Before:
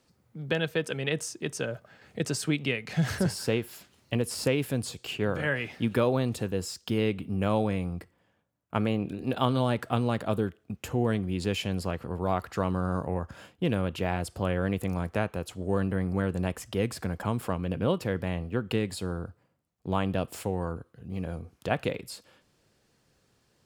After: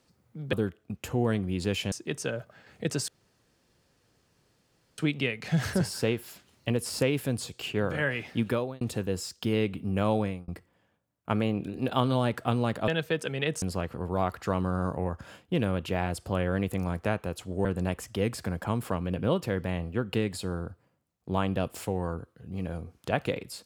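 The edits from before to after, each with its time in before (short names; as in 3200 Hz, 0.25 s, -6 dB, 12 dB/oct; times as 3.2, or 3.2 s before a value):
0.53–1.27 swap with 10.33–11.72
2.43 insert room tone 1.90 s
5.88–6.26 fade out
7.67–7.93 fade out
15.75–16.23 cut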